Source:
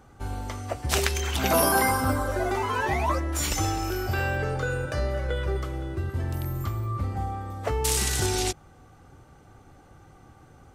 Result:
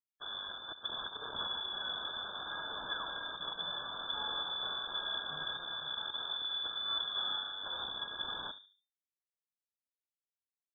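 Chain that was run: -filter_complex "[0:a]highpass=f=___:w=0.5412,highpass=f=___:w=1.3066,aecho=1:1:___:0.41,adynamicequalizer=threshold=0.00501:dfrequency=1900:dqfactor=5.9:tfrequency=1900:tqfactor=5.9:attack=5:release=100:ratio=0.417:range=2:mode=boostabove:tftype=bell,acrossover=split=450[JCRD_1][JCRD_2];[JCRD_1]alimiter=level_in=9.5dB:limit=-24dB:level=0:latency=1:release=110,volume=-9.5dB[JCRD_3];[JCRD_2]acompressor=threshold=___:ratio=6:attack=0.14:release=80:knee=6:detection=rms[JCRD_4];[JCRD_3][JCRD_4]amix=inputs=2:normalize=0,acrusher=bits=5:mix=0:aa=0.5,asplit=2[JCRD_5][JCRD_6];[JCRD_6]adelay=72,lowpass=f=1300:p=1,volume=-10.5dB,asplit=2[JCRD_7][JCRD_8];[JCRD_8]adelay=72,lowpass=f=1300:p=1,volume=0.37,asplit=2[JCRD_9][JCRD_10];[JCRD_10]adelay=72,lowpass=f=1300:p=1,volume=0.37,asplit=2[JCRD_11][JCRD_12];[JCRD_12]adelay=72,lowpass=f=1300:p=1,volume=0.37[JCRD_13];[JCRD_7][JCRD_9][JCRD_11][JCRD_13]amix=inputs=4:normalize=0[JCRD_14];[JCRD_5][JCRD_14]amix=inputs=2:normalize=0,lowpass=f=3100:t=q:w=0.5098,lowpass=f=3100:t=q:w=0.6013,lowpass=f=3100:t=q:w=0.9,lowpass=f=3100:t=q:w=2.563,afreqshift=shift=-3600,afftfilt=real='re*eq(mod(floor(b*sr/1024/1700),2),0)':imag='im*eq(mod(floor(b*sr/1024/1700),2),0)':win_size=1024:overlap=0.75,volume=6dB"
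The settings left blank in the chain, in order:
170, 170, 1.2, -38dB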